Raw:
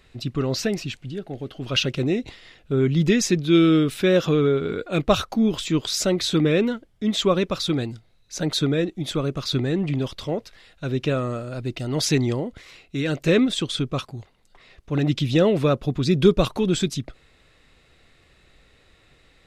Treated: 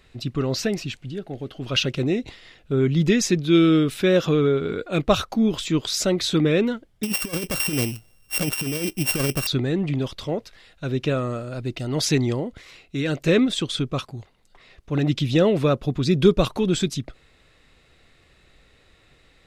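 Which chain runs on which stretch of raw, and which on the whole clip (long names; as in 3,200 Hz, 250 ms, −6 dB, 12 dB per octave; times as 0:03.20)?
0:07.03–0:09.47: samples sorted by size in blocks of 16 samples + high-shelf EQ 5,200 Hz +11 dB + compressor whose output falls as the input rises −23 dBFS, ratio −0.5
whole clip: no processing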